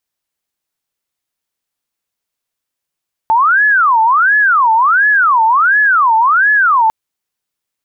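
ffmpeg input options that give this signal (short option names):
-f lavfi -i "aevalsrc='0.447*sin(2*PI*(1296*t-414/(2*PI*1.4)*sin(2*PI*1.4*t)))':d=3.6:s=44100"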